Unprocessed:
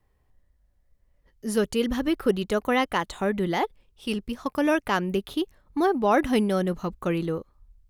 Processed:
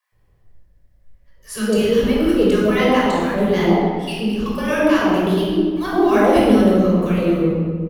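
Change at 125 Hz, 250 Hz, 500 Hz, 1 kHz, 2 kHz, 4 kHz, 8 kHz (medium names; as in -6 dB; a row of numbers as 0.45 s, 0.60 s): +11.0 dB, +10.5 dB, +9.5 dB, +6.0 dB, +6.5 dB, +7.0 dB, +6.0 dB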